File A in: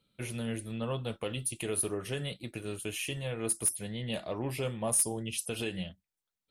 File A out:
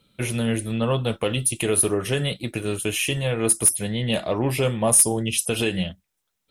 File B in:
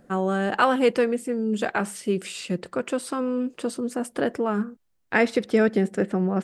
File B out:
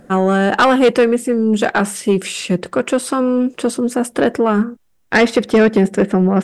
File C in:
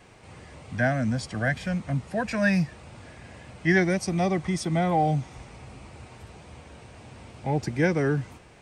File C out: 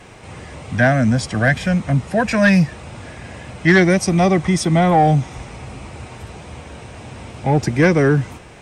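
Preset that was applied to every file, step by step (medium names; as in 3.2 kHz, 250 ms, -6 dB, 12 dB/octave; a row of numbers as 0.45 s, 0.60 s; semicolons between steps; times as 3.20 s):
band-stop 4.5 kHz, Q 15; in parallel at -8.5 dB: sine folder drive 9 dB, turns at -6.5 dBFS; on the sum: peak normalisation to -6 dBFS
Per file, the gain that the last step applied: +3.5 dB, +2.5 dB, +2.5 dB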